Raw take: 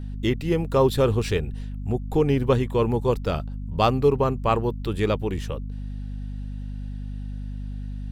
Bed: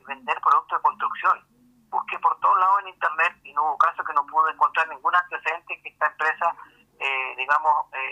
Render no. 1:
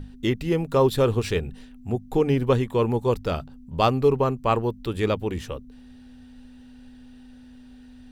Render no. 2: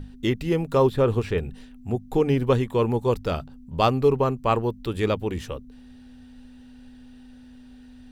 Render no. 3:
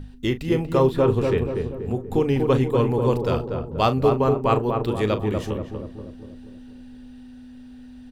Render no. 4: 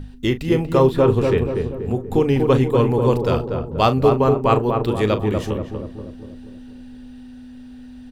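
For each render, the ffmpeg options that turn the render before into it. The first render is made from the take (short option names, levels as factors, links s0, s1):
-af "bandreject=f=50:t=h:w=6,bandreject=f=100:t=h:w=6,bandreject=f=150:t=h:w=6,bandreject=f=200:t=h:w=6"
-filter_complex "[0:a]asettb=1/sr,asplit=3[s0][s1][s2];[s0]atrim=end=0.874[s3];[s1]atrim=start=0.87:end=1.38,asetpts=PTS-STARTPTS,afade=t=in:d=0.004:c=qsin,afade=t=out:st=0.506:d=0.004:c=qsin,acrossover=split=2600[s4][s5];[s5]acompressor=threshold=0.00447:ratio=4:attack=1:release=60[s6];[s4][s6]amix=inputs=2:normalize=0[s7];[s2]atrim=start=1.376[s8];[s3][s7]acrossfade=d=0.004:c1=hsin:c2=qsin[s9];[s9][s8]acrossfade=d=0.004:c1=qsin:c2=hsin"
-filter_complex "[0:a]asplit=2[s0][s1];[s1]adelay=38,volume=0.251[s2];[s0][s2]amix=inputs=2:normalize=0,asplit=2[s3][s4];[s4]adelay=240,lowpass=f=1100:p=1,volume=0.668,asplit=2[s5][s6];[s6]adelay=240,lowpass=f=1100:p=1,volume=0.55,asplit=2[s7][s8];[s8]adelay=240,lowpass=f=1100:p=1,volume=0.55,asplit=2[s9][s10];[s10]adelay=240,lowpass=f=1100:p=1,volume=0.55,asplit=2[s11][s12];[s12]adelay=240,lowpass=f=1100:p=1,volume=0.55,asplit=2[s13][s14];[s14]adelay=240,lowpass=f=1100:p=1,volume=0.55,asplit=2[s15][s16];[s16]adelay=240,lowpass=f=1100:p=1,volume=0.55,asplit=2[s17][s18];[s18]adelay=240,lowpass=f=1100:p=1,volume=0.55[s19];[s3][s5][s7][s9][s11][s13][s15][s17][s19]amix=inputs=9:normalize=0"
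-af "volume=1.5"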